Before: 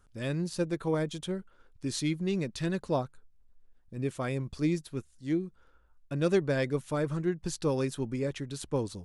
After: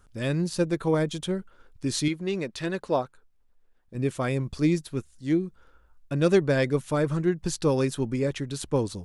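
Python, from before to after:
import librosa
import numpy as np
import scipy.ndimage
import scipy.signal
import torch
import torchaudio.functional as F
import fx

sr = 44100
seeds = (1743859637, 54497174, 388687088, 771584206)

y = fx.bass_treble(x, sr, bass_db=-10, treble_db=-5, at=(2.08, 3.95))
y = y * 10.0 ** (5.5 / 20.0)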